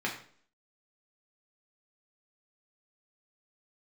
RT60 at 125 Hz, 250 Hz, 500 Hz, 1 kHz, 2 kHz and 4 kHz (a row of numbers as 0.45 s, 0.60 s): 0.50 s, 0.60 s, 0.55 s, 0.50 s, 0.45 s, 0.45 s